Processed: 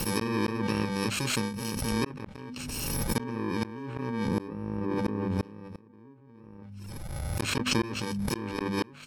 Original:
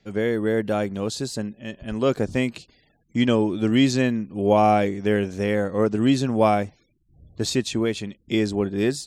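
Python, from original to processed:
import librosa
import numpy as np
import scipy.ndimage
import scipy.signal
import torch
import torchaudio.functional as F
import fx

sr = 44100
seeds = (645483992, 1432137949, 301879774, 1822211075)

y = fx.bit_reversed(x, sr, seeds[0], block=64)
y = fx.env_lowpass_down(y, sr, base_hz=1600.0, full_db=-16.5)
y = fx.tilt_shelf(y, sr, db=7.0, hz=1400.0, at=(4.28, 6.63))
y = fx.hum_notches(y, sr, base_hz=50, count=5)
y = fx.gate_flip(y, sr, shuts_db=-17.0, range_db=-39)
y = fx.pre_swell(y, sr, db_per_s=22.0)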